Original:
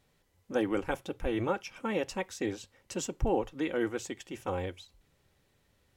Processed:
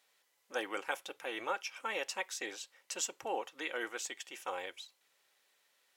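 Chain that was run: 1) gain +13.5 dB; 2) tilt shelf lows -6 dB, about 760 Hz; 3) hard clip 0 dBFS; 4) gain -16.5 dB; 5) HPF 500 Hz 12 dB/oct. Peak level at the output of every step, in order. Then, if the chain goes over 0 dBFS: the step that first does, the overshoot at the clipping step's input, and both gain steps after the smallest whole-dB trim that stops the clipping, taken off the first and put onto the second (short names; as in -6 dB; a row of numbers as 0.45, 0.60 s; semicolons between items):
-3.0, -2.0, -2.0, -18.5, -20.0 dBFS; no overload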